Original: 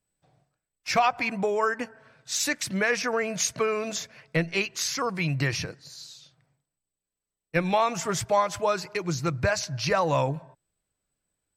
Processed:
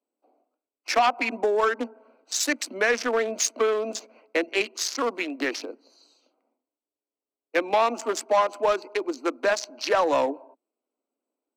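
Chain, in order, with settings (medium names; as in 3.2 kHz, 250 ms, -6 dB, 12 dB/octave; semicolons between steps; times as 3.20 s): local Wiener filter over 25 samples; steep high-pass 230 Hz 96 dB/octave; saturation -18 dBFS, distortion -16 dB; trim +5 dB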